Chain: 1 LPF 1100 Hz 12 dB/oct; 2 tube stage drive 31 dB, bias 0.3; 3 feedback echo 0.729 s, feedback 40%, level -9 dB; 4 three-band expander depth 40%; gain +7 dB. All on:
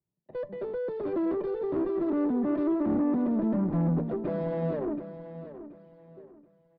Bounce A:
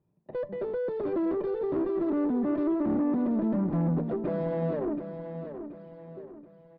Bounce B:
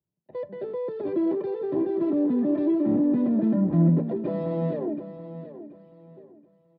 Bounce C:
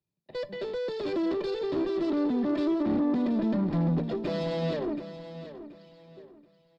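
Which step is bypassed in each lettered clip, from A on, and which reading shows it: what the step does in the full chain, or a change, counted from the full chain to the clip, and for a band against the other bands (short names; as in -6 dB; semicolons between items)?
4, crest factor change -2.0 dB; 2, crest factor change +3.0 dB; 1, 2 kHz band +5.5 dB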